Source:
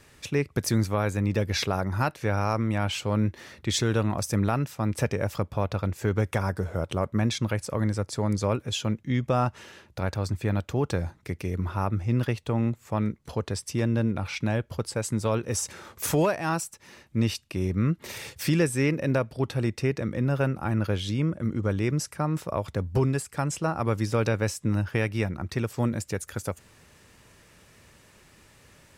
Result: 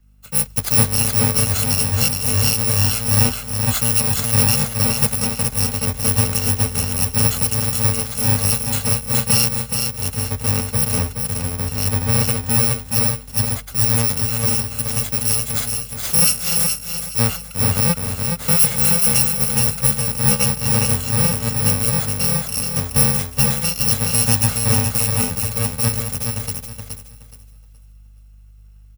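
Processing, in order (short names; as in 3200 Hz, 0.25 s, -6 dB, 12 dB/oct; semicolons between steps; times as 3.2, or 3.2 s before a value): FFT order left unsorted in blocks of 128 samples; hum 50 Hz, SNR 19 dB; on a send: feedback echo 0.422 s, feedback 41%, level -3 dB; on the sum: three-band expander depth 70%; gain +6.5 dB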